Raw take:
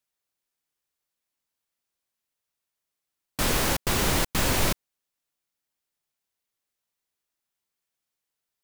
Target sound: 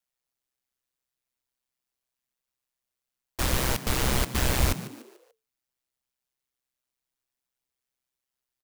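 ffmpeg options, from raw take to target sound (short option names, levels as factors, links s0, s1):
-filter_complex "[0:a]aeval=exprs='val(0)*sin(2*PI*64*n/s)':c=same,lowshelf=f=61:g=8.5,asplit=5[s0][s1][s2][s3][s4];[s1]adelay=146,afreqshift=110,volume=0.178[s5];[s2]adelay=292,afreqshift=220,volume=0.0692[s6];[s3]adelay=438,afreqshift=330,volume=0.0269[s7];[s4]adelay=584,afreqshift=440,volume=0.0106[s8];[s0][s5][s6][s7][s8]amix=inputs=5:normalize=0"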